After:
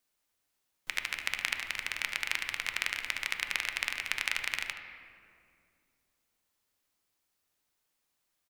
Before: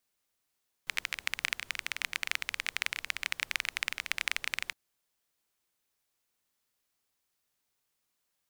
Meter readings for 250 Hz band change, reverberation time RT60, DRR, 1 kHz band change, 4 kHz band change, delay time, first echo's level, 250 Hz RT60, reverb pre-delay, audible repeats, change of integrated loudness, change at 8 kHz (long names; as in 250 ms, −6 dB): +2.0 dB, 2.3 s, 4.5 dB, +1.5 dB, +0.5 dB, 75 ms, −13.0 dB, 3.2 s, 3 ms, 1, +1.0 dB, 0.0 dB